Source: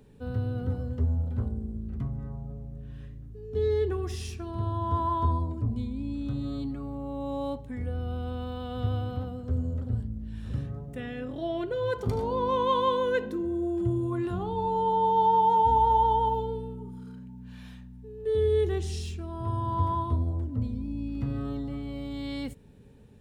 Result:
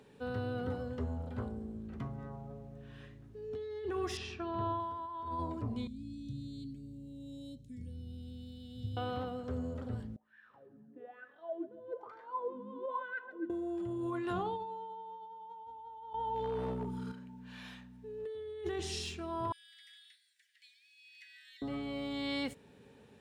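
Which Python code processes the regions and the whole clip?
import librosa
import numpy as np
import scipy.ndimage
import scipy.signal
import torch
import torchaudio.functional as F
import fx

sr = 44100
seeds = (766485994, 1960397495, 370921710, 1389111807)

y = fx.chain(x, sr, fx.lowpass(hz=3200.0, slope=12),
    fx.notch(hz=2100.0, q=12.0), at=(4.17, 4.8))
y = fx.chain(y, sr, fx.cheby1_bandstop(low_hz=170.0, high_hz=6100.0, order=2),
    fx.high_shelf(hz=8300.0, db=-4.0), at=(5.87, 8.97))
y = fx.chain(y, sr, fx.wah_lfo(hz=1.1, low_hz=210.0, high_hz=1700.0, q=9.5),
    fx.echo_feedback(ms=137, feedback_pct=59, wet_db=-19.0), at=(10.16, 13.5))
y = fx.chain(y, sr, fx.low_shelf(hz=120.0, db=11.0),
    fx.over_compress(threshold_db=-32.0, ratio=-1.0),
    fx.clip_hard(threshold_db=-25.5), at=(16.13, 17.12))
y = fx.chain(y, sr, fx.steep_highpass(hz=1700.0, slope=96),
    fx.peak_eq(hz=3100.0, db=-3.5, octaves=0.71),
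    fx.echo_single(ms=943, db=-19.5), at=(19.52, 21.62))
y = fx.highpass(y, sr, hz=680.0, slope=6)
y = fx.high_shelf(y, sr, hz=7800.0, db=-11.5)
y = fx.over_compress(y, sr, threshold_db=-39.0, ratio=-1.0)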